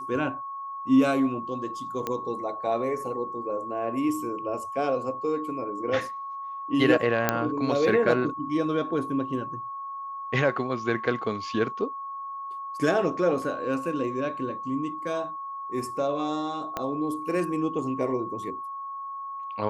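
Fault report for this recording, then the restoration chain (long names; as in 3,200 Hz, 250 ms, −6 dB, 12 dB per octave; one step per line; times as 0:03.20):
whistle 1,100 Hz −33 dBFS
0:02.07: click −15 dBFS
0:07.29: click −6 dBFS
0:16.77: click −15 dBFS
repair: click removal
notch filter 1,100 Hz, Q 30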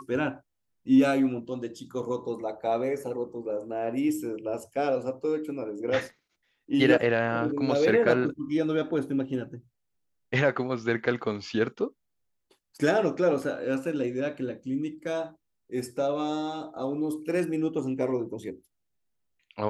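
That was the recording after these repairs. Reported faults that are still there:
0:16.77: click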